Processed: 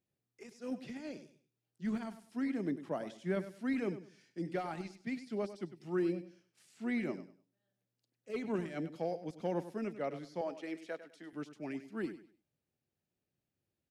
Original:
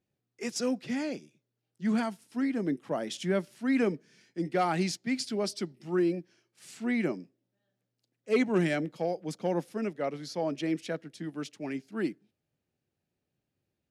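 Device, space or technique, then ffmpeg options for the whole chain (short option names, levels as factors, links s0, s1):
de-esser from a sidechain: -filter_complex "[0:a]asettb=1/sr,asplit=3[s0][s1][s2];[s0]atrim=end=10.414[s3];[s1]atrim=start=10.41:end=11.33,asetpts=PTS-STARTPTS,afade=t=in:d=0.004:c=qsin,afade=t=out:st=0.916:d=0.004:c=qsin,highpass=440[s4];[s2]atrim=start=11.326[s5];[s3][s4]acrossfade=d=0.004:c1=hsin:c2=qsin[s6];[s6][s5]acrossfade=d=0.004:c1=qsin:c2=hsin,asplit=2[s7][s8];[s8]highpass=f=6300:w=0.5412,highpass=f=6300:w=1.3066,apad=whole_len=613371[s9];[s7][s9]sidechaincompress=threshold=0.00112:ratio=8:attack=0.79:release=33,aecho=1:1:99|198|297:0.224|0.056|0.014,volume=0.531"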